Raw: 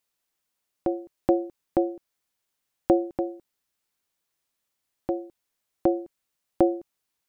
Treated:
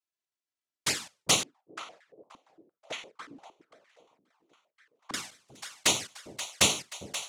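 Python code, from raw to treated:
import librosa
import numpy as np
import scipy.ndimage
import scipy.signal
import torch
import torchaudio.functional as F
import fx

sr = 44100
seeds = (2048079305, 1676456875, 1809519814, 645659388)

y = fx.wiener(x, sr, points=25)
y = fx.peak_eq(y, sr, hz=400.0, db=4.5, octaves=0.21)
y = fx.hum_notches(y, sr, base_hz=60, count=6)
y = fx.noise_vocoder(y, sr, seeds[0], bands=1)
y = fx.env_flanger(y, sr, rest_ms=3.0, full_db=-20.0)
y = fx.echo_split(y, sr, split_hz=600.0, low_ms=401, high_ms=530, feedback_pct=52, wet_db=-12.5)
y = fx.filter_held_bandpass(y, sr, hz=8.7, low_hz=270.0, high_hz=1800.0, at=(1.43, 5.14))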